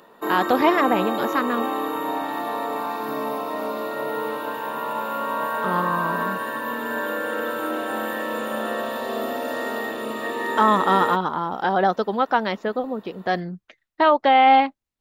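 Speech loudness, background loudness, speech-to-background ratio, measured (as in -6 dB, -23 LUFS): -21.0 LUFS, -26.5 LUFS, 5.5 dB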